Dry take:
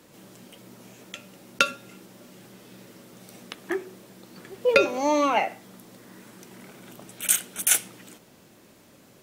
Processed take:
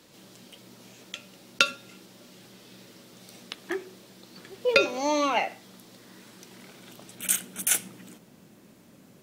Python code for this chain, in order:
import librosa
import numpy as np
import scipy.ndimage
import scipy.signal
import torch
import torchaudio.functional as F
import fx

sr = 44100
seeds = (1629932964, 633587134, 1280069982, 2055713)

y = fx.peak_eq(x, sr, hz=fx.steps((0.0, 4200.0), (7.15, 190.0)), db=7.5, octaves=1.3)
y = F.gain(torch.from_numpy(y), -3.5).numpy()